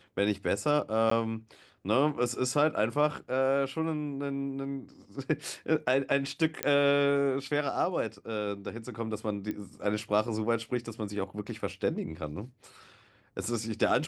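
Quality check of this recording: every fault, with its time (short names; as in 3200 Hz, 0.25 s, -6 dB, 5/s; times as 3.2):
1.1–1.11 gap
6.63 pop -10 dBFS
9.51 pop -23 dBFS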